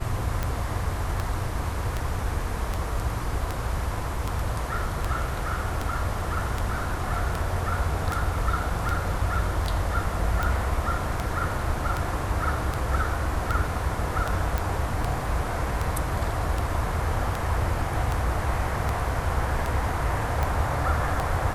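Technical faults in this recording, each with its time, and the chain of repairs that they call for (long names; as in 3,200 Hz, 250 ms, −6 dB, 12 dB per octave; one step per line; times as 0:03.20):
scratch tick 78 rpm −13 dBFS
0:14.58: click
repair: click removal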